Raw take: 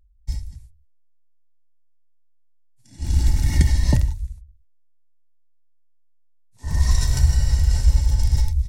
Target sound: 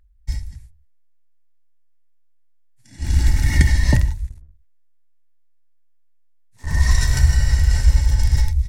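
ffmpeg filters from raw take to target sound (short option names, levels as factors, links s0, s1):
-filter_complex "[0:a]asettb=1/sr,asplit=3[s0][s1][s2];[s0]atrim=end=4.294[s3];[s1]atrim=start=4.29:end=6.67,asetpts=PTS-STARTPTS,afade=t=in:d=0.004:c=qsin,afade=t=out:st=2.376:d=0.004:c=qsin,aeval=exprs='if(lt(val(0),0),0.251*val(0),val(0))':c=same[s4];[s2]atrim=start=6.666[s5];[s3][s4]acrossfade=d=0.004:c1=hsin:c2=qsin[s6];[s6][s5]acrossfade=d=0.004:c1=qsin:c2=hsin,equalizer=f=1800:w=1.5:g=9,bandreject=f=170.4:t=h:w=4,bandreject=f=340.8:t=h:w=4,bandreject=f=511.2:t=h:w=4,bandreject=f=681.6:t=h:w=4,bandreject=f=852:t=h:w=4,bandreject=f=1022.4:t=h:w=4,volume=1.26"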